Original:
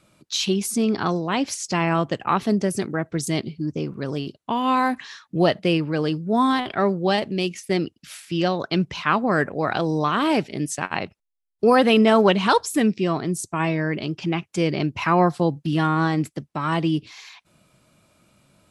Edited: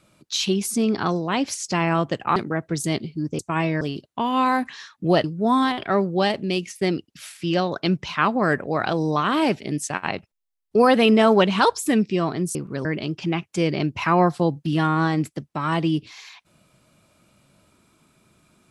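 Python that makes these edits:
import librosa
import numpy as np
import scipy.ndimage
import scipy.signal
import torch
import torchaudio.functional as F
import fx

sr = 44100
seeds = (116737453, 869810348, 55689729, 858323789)

y = fx.edit(x, sr, fx.cut(start_s=2.36, length_s=0.43),
    fx.swap(start_s=3.82, length_s=0.3, other_s=13.43, other_length_s=0.42),
    fx.cut(start_s=5.55, length_s=0.57), tone=tone)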